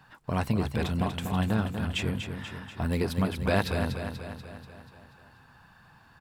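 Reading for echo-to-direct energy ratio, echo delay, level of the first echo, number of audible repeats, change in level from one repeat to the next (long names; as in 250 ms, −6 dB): −6.0 dB, 242 ms, −7.5 dB, 6, −5.0 dB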